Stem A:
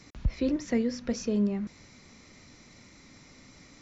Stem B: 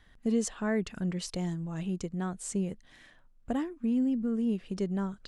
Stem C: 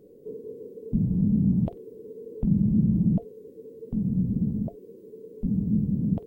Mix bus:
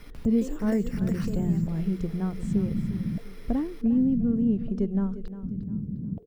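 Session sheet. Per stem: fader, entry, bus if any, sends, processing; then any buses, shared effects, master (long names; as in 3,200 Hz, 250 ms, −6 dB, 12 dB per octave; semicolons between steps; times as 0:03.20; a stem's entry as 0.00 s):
+1.0 dB, 0.00 s, no send, echo send −18 dB, downward compressor 6 to 1, threshold −35 dBFS, peak gain reduction 14 dB; decimation without filtering 6×
−3.0 dB, 0.00 s, no send, echo send −13.5 dB, spectral tilt −4 dB per octave; mains-hum notches 60/120/180 Hz
−14.5 dB, 0.00 s, no send, no echo send, low-shelf EQ 490 Hz +8 dB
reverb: not used
echo: repeating echo 353 ms, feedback 32%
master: no processing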